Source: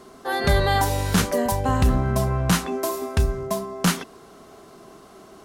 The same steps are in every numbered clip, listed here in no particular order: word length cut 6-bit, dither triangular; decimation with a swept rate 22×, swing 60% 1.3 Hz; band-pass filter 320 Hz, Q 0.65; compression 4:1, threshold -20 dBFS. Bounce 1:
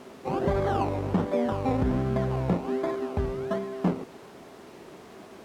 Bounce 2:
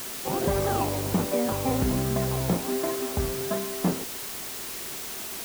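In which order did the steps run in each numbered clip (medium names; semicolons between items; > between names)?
decimation with a swept rate > word length cut > band-pass filter > compression; decimation with a swept rate > band-pass filter > compression > word length cut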